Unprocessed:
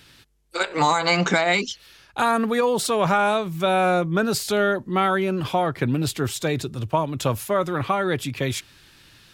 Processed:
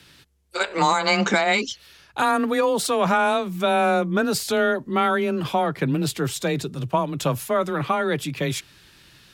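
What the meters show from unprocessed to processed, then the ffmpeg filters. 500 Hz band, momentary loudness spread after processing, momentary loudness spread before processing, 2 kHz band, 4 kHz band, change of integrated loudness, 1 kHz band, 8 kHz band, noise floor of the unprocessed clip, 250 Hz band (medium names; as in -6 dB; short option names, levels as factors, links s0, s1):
0.0 dB, 7 LU, 8 LU, +0.5 dB, 0.0 dB, 0.0 dB, 0.0 dB, 0.0 dB, -53 dBFS, +0.5 dB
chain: -af "afreqshift=18"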